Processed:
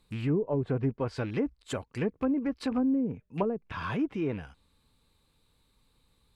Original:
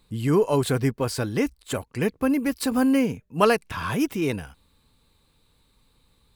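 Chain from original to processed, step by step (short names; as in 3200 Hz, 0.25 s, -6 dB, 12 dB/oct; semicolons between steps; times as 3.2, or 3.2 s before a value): rattling part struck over -27 dBFS, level -28 dBFS; treble ducked by the level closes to 350 Hz, closed at -16 dBFS; gain -5.5 dB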